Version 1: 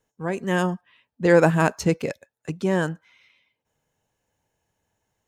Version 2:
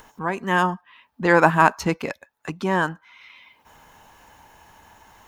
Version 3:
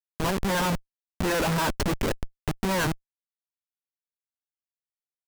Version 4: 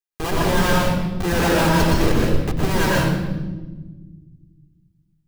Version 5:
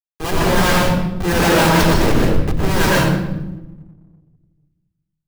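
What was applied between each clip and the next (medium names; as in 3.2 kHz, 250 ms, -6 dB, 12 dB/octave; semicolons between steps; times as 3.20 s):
graphic EQ 125/500/1000/8000 Hz -10/-8/+9/-7 dB; in parallel at +2 dB: upward compressor, threshold -27 dBFS; on the sum: trim -4 dB
treble shelf 10 kHz -8.5 dB; Schmitt trigger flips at -28.5 dBFS
reverberation RT60 1.3 s, pre-delay 95 ms, DRR -4.5 dB
companding laws mixed up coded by mu; wavefolder -12.5 dBFS; three bands expanded up and down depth 70%; trim +4.5 dB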